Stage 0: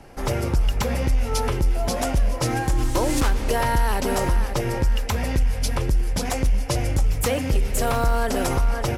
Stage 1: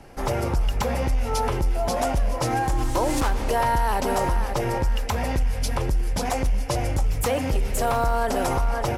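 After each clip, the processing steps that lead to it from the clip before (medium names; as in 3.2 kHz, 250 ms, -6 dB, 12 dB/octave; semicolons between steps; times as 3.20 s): dynamic bell 820 Hz, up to +7 dB, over -39 dBFS, Q 1.1; in parallel at +2.5 dB: peak limiter -17 dBFS, peak gain reduction 9 dB; on the sum: trim -8 dB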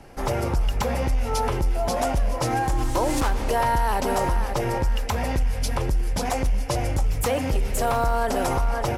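no audible change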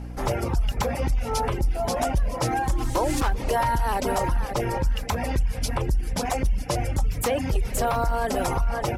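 hum 60 Hz, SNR 12 dB; reverb removal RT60 0.65 s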